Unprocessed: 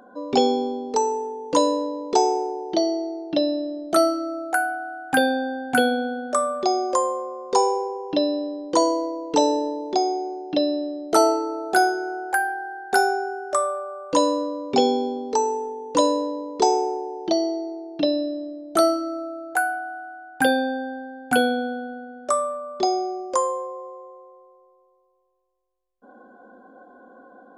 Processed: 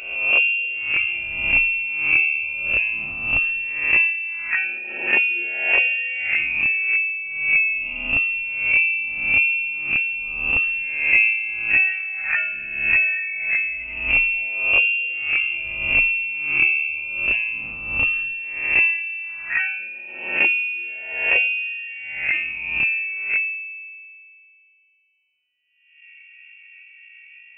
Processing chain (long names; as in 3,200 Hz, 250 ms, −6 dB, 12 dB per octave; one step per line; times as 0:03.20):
peak hold with a rise ahead of every peak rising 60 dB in 0.96 s
formants moved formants −5 semitones
voice inversion scrambler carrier 3,000 Hz